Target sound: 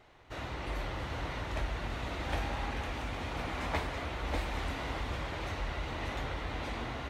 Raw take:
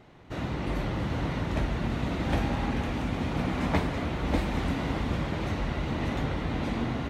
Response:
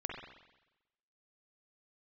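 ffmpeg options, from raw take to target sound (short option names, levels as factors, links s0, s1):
-filter_complex "[0:a]equalizer=f=190:w=0.74:g=-14,asplit=2[s0][s1];[s1]asoftclip=type=hard:threshold=0.0299,volume=0.282[s2];[s0][s2]amix=inputs=2:normalize=0,volume=0.631"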